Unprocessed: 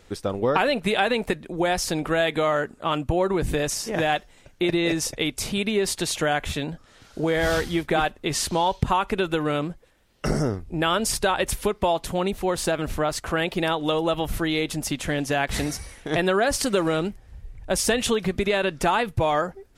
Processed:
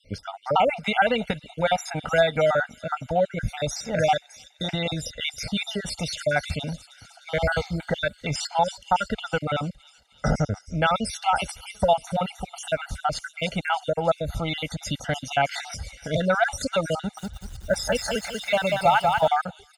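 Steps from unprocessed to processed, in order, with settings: random holes in the spectrogram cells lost 51%; high-pass 44 Hz 12 dB/octave; distance through air 67 m; band-stop 7.8 kHz, Q 16; comb 1.4 ms, depth 95%; feedback echo behind a high-pass 307 ms, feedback 60%, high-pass 5.3 kHz, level -8 dB; 16.98–19.28 s: bit-crushed delay 190 ms, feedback 35%, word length 8-bit, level -3 dB

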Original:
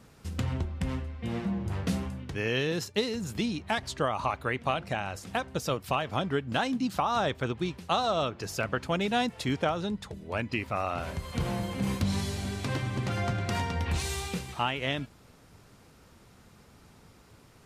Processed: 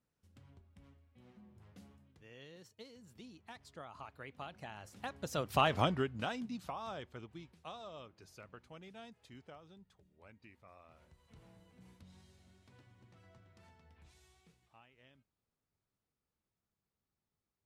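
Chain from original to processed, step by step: Doppler pass-by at 5.71 s, 20 m/s, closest 2.9 m; trim +1.5 dB

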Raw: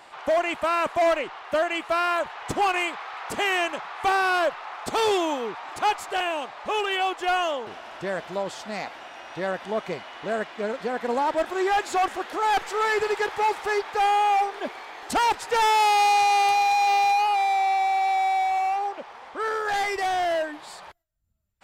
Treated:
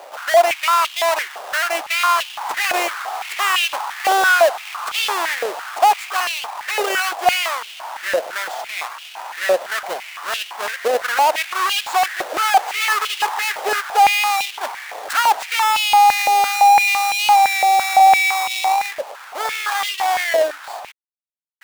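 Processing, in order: square wave that keeps the level; companded quantiser 4-bit; step-sequenced high-pass 5.9 Hz 560–2900 Hz

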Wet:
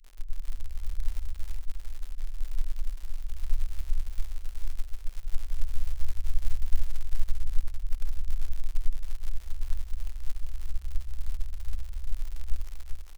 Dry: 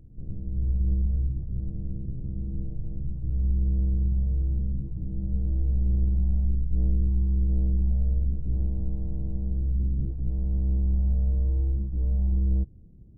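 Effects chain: inverse Chebyshev band-stop 120–620 Hz, stop band 70 dB; crackle 80 per s -42 dBFS; on a send: feedback delay 393 ms, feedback 43%, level -3.5 dB; on the sum: upward expansion 1.5:1, over -42 dBFS; trim +13.5 dB

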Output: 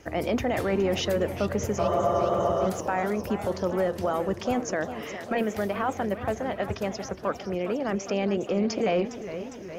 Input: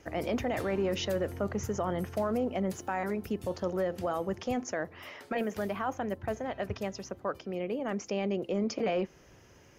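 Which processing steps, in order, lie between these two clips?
spectral freeze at 1.82 s, 0.84 s; modulated delay 410 ms, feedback 69%, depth 165 cents, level -12 dB; trim +5 dB

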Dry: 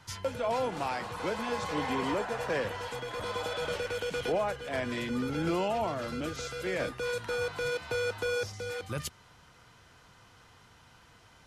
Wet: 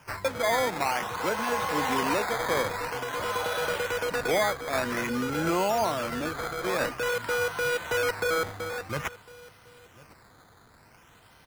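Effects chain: bass shelf 130 Hz -4 dB; on a send: delay 1053 ms -20 dB; on the sum: decimation with a swept rate 11×, swing 100% 0.5 Hz; dynamic bell 1.4 kHz, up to +6 dB, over -48 dBFS, Q 0.75; trim +2.5 dB

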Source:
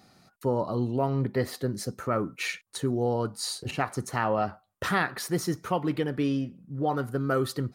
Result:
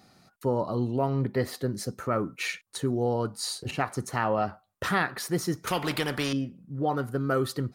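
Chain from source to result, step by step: 5.67–6.33 s: spectrum-flattening compressor 2:1

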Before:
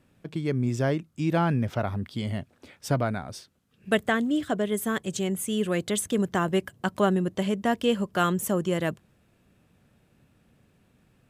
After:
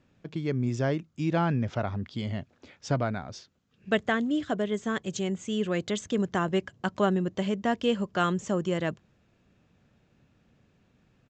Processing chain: resampled via 16 kHz; trim -2 dB

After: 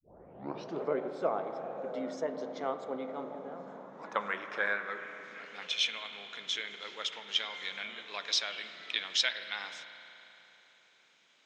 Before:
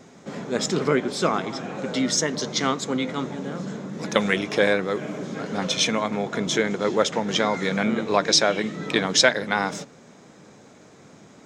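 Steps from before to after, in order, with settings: tape start-up on the opening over 0.81 s; band-pass sweep 640 Hz -> 3.1 kHz, 3.34–5.91 s; spring tank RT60 3.4 s, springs 34 ms, chirp 25 ms, DRR 8.5 dB; trim -3.5 dB

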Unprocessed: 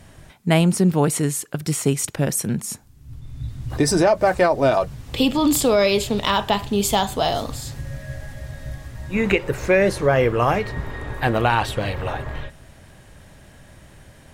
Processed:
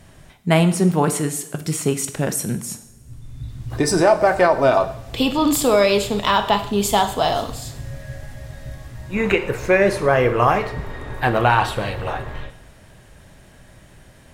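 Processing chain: two-slope reverb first 0.65 s, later 2.7 s, from -21 dB, DRR 8 dB; dynamic bell 1.1 kHz, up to +5 dB, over -29 dBFS, Q 0.85; trim -1 dB

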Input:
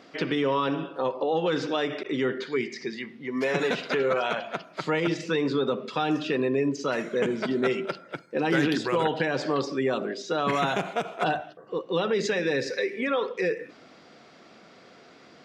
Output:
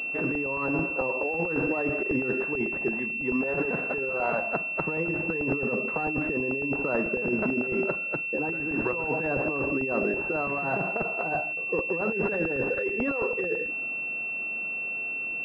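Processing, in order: compressor with a negative ratio -28 dBFS, ratio -0.5; crackling interface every 0.11 s, samples 64, repeat, from 0.35 s; class-D stage that switches slowly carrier 2.7 kHz; trim +1 dB

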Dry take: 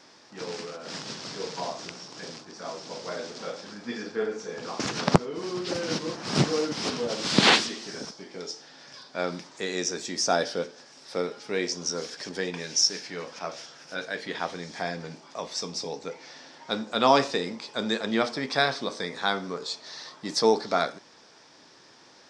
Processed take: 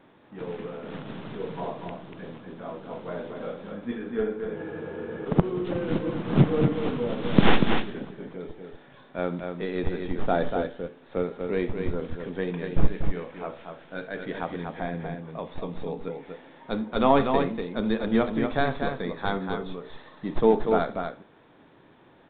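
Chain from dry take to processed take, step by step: tracing distortion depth 0.11 ms; tilt EQ -3 dB/octave; in parallel at -12 dB: Schmitt trigger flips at -17.5 dBFS; on the sum: resampled via 8 kHz; on a send: multi-tap echo 69/240 ms -18.5/-5.5 dB; on the sum: spectral freeze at 4.58 s, 0.67 s; trim -2.5 dB

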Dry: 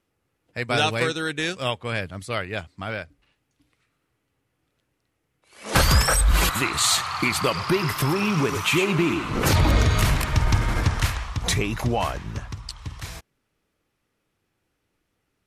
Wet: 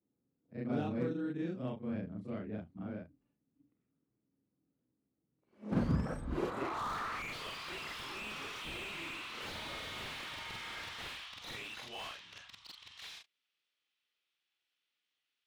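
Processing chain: short-time spectra conjugated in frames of 95 ms; band-pass sweep 230 Hz -> 3.4 kHz, 6.22–7.39 s; slew-rate limiter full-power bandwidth 14 Hz; trim +2.5 dB

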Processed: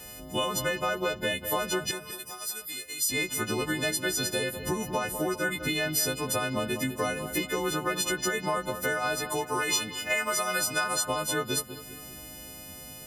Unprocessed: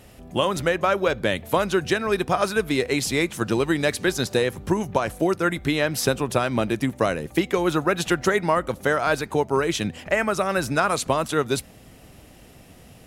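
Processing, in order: partials quantised in pitch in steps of 3 st; 9.30–10.84 s: tilt shelf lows -5 dB, about 700 Hz; compression 2.5:1, threshold -30 dBFS, peak gain reduction 12.5 dB; 1.91–3.09 s: pre-emphasis filter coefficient 0.9; feedback echo behind a low-pass 199 ms, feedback 44%, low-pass 3.3 kHz, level -10 dB

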